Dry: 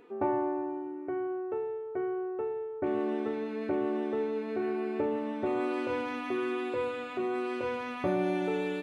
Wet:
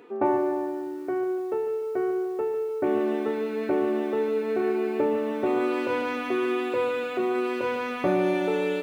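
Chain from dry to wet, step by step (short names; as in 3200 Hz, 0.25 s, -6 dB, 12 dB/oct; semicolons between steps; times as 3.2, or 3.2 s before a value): HPF 150 Hz 12 dB/oct; on a send at -21 dB: reverb RT60 0.45 s, pre-delay 0.102 s; on the sum: lo-fi delay 0.148 s, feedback 55%, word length 9-bit, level -12 dB; gain +6 dB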